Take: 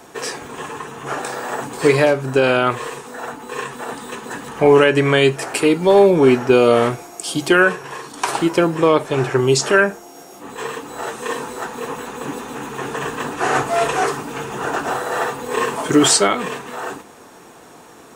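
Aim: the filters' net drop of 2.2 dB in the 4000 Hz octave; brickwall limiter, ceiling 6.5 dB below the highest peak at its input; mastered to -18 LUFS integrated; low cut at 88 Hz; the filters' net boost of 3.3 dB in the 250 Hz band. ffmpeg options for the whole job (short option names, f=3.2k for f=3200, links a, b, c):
-af "highpass=88,equalizer=f=250:t=o:g=4.5,equalizer=f=4k:t=o:g=-3,volume=1.5dB,alimiter=limit=-5dB:level=0:latency=1"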